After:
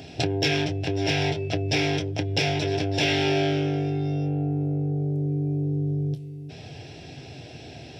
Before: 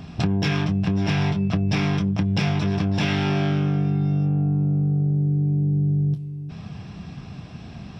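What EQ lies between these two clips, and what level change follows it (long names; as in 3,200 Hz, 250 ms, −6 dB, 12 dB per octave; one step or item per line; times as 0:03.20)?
high-pass filter 140 Hz 12 dB per octave
phaser with its sweep stopped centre 470 Hz, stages 4
+6.0 dB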